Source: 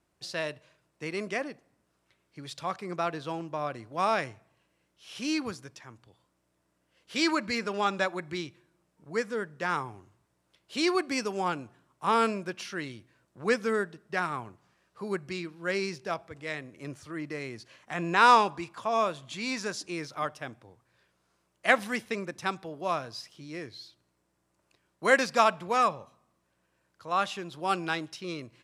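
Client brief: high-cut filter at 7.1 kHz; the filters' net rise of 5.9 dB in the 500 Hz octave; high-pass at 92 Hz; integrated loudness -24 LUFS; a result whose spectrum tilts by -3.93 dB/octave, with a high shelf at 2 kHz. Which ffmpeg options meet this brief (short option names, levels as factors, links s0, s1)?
-af "highpass=92,lowpass=7100,equalizer=f=500:t=o:g=7,highshelf=f=2000:g=4,volume=1.33"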